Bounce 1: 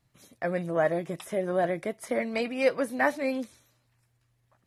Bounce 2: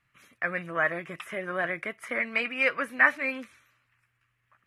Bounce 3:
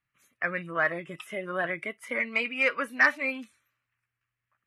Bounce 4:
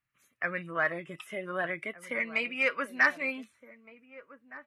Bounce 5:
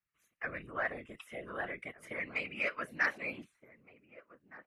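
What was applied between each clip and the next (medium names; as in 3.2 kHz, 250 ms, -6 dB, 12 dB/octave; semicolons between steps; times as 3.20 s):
high-order bell 1.8 kHz +15.5 dB; trim -7 dB
sine folder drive 3 dB, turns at -5 dBFS; spectral noise reduction 12 dB; trim -6.5 dB
echo from a far wall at 260 m, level -16 dB; trim -2.5 dB
whisper effect; trim -7 dB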